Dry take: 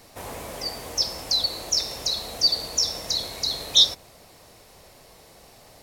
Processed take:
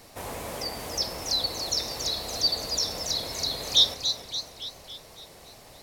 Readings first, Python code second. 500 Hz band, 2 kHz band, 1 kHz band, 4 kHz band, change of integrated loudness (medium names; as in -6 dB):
+1.0 dB, +0.5 dB, +1.0 dB, -3.0 dB, -3.5 dB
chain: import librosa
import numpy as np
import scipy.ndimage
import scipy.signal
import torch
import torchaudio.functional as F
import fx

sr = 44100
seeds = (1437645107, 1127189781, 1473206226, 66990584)

y = fx.dynamic_eq(x, sr, hz=6400.0, q=0.78, threshold_db=-35.0, ratio=4.0, max_db=-6)
y = fx.echo_warbled(y, sr, ms=282, feedback_pct=55, rate_hz=2.8, cents=154, wet_db=-8.0)